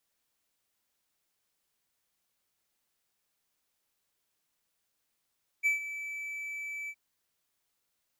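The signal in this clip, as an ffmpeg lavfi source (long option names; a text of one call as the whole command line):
ffmpeg -f lavfi -i "aevalsrc='0.0944*(1-4*abs(mod(2310*t+0.25,1)-0.5))':duration=1.315:sample_rate=44100,afade=type=in:duration=0.031,afade=type=out:start_time=0.031:duration=0.13:silence=0.211,afade=type=out:start_time=1.26:duration=0.055" out.wav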